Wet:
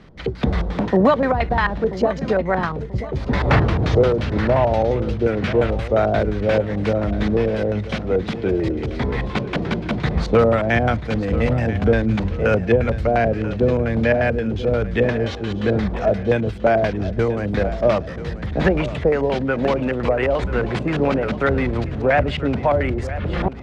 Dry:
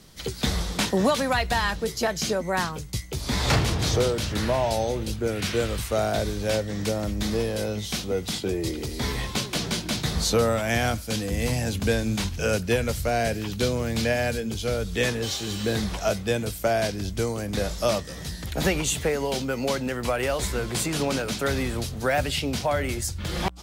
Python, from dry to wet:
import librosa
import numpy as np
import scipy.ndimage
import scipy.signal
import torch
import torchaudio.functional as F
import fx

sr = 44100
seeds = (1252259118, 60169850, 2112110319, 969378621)

y = fx.filter_lfo_lowpass(x, sr, shape='square', hz=5.7, low_hz=600.0, high_hz=2000.0, q=1.1)
y = fx.echo_feedback(y, sr, ms=985, feedback_pct=41, wet_db=-14.0)
y = F.gain(torch.from_numpy(y), 6.5).numpy()